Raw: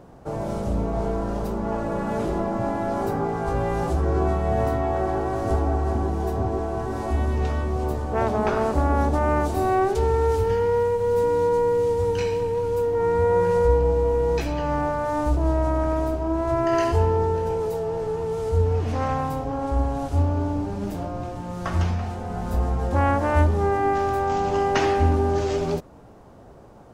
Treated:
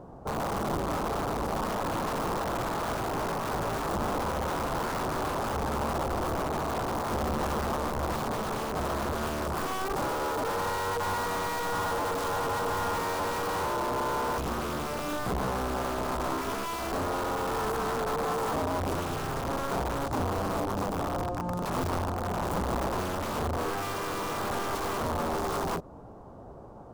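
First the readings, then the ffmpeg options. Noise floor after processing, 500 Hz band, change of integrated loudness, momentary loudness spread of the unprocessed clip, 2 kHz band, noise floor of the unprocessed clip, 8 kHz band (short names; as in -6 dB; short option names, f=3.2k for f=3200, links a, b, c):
-45 dBFS, -10.0 dB, -7.0 dB, 7 LU, -1.0 dB, -45 dBFS, n/a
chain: -af "acompressor=threshold=-24dB:ratio=20,aeval=exprs='(mod(16.8*val(0)+1,2)-1)/16.8':c=same,highshelf=f=1.5k:t=q:w=1.5:g=-8"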